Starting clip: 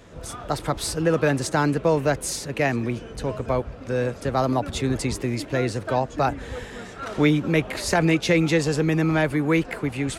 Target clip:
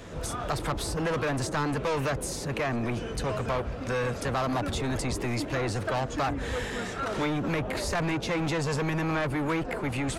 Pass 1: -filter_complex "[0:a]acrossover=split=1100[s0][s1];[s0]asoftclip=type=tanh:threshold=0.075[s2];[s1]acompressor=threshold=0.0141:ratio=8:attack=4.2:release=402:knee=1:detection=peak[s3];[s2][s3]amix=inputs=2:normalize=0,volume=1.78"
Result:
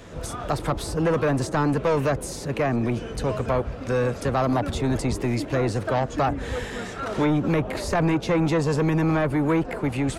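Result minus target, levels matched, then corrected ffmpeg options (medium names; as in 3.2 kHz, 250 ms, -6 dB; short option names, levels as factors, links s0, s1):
saturation: distortion -6 dB
-filter_complex "[0:a]acrossover=split=1100[s0][s1];[s0]asoftclip=type=tanh:threshold=0.0251[s2];[s1]acompressor=threshold=0.0141:ratio=8:attack=4.2:release=402:knee=1:detection=peak[s3];[s2][s3]amix=inputs=2:normalize=0,volume=1.78"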